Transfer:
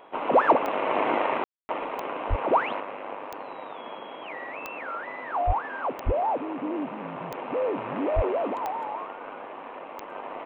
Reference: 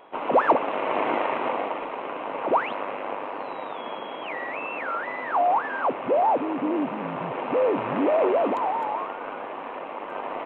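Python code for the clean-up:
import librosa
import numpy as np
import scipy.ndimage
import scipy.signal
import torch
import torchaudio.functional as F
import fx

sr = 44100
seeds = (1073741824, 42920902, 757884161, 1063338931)

y = fx.fix_declick_ar(x, sr, threshold=10.0)
y = fx.fix_deplosive(y, sr, at_s=(2.29, 5.46, 6.05, 8.15))
y = fx.fix_ambience(y, sr, seeds[0], print_start_s=9.46, print_end_s=9.96, start_s=1.44, end_s=1.69)
y = fx.fix_level(y, sr, at_s=2.8, step_db=5.0)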